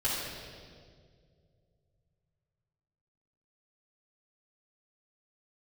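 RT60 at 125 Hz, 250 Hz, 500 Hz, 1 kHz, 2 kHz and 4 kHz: 4.0, 2.6, 2.6, 1.7, 1.5, 1.6 seconds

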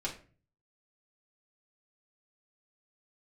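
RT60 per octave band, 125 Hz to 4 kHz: 0.75, 0.55, 0.45, 0.35, 0.35, 0.25 seconds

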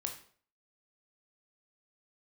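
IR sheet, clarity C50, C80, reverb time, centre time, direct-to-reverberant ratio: 8.5 dB, 13.0 dB, 0.50 s, 17 ms, 3.0 dB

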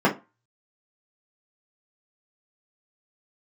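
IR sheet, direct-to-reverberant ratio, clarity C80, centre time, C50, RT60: −4.0 dB, 22.0 dB, 15 ms, 13.5 dB, 0.25 s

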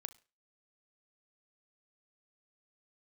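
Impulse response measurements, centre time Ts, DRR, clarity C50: 4 ms, 11.5 dB, 17.0 dB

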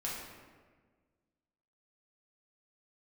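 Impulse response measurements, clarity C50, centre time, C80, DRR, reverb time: 0.5 dB, 79 ms, 3.0 dB, −6.0 dB, 1.5 s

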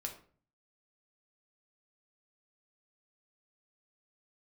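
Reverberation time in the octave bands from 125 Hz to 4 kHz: 0.75, 0.60, 0.50, 0.40, 0.40, 0.30 seconds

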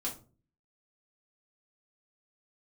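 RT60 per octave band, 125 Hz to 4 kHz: 0.60, 0.55, 0.45, 0.30, 0.25, 0.25 seconds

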